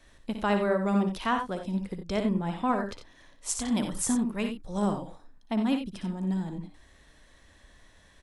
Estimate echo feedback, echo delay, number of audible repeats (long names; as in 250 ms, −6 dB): repeats not evenly spaced, 59 ms, 2